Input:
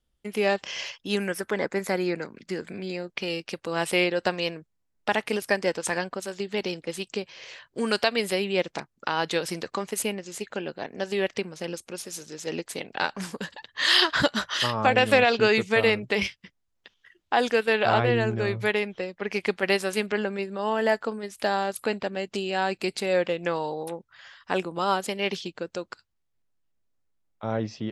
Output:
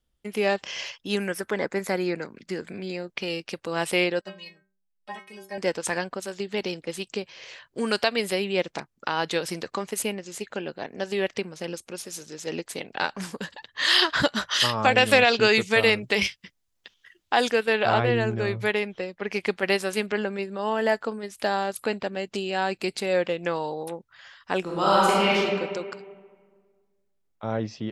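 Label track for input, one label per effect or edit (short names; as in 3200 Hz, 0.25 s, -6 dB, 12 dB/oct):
4.210000	5.580000	metallic resonator 190 Hz, decay 0.4 s, inharmonicity 0.008
14.510000	17.510000	high shelf 2800 Hz +7.5 dB
24.610000	25.360000	reverb throw, RT60 1.7 s, DRR -6 dB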